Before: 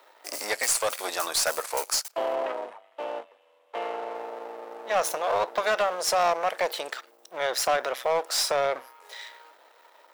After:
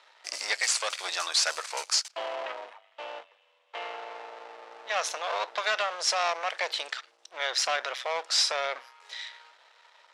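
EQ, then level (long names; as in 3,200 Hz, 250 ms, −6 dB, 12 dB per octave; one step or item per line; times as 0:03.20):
resonant band-pass 5,400 Hz, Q 0.58
high-frequency loss of the air 91 metres
+7.0 dB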